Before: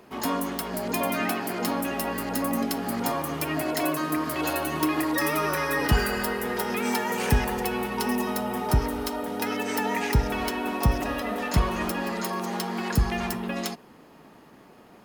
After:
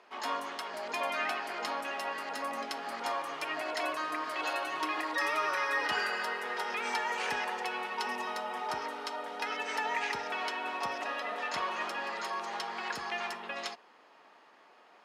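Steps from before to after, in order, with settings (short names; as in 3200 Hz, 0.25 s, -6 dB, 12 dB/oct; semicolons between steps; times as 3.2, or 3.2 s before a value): BPF 720–4900 Hz; gain -2.5 dB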